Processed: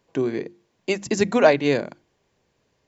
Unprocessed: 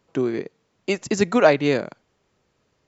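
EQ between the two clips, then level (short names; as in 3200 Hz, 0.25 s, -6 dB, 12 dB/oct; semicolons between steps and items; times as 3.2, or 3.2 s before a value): notches 50/100/150/200/250/300/350 Hz; notch 1300 Hz, Q 7.4; 0.0 dB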